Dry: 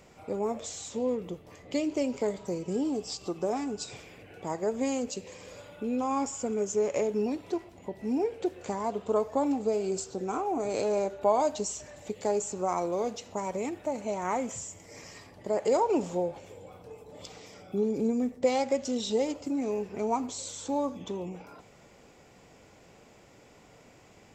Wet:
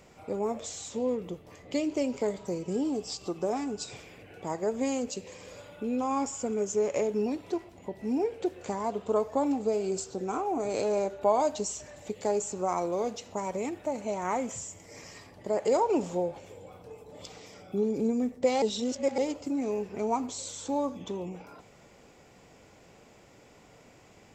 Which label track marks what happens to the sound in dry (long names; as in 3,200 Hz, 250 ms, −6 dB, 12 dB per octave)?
18.620000	19.180000	reverse